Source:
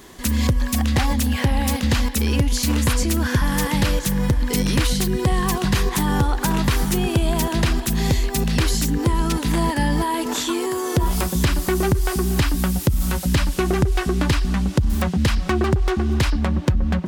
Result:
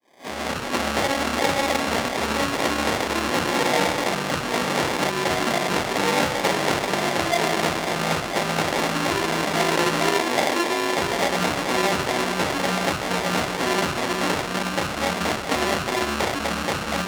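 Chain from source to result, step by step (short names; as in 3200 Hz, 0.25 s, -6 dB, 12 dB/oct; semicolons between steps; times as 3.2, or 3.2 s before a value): opening faded in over 0.79 s; in parallel at -8 dB: wrapped overs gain 24 dB; on the sum: low shelf 500 Hz -9 dB; reverb RT60 0.40 s, pre-delay 3 ms, DRR -7.5 dB; reverse; upward compressor, threshold -29 dBFS; reverse; sample-and-hold 32×; limiter -6 dBFS, peak gain reduction 6 dB; weighting filter A; Doppler distortion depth 0.2 ms; gain -1.5 dB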